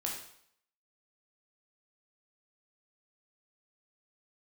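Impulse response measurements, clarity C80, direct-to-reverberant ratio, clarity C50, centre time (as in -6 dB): 7.5 dB, -2.0 dB, 4.0 dB, 37 ms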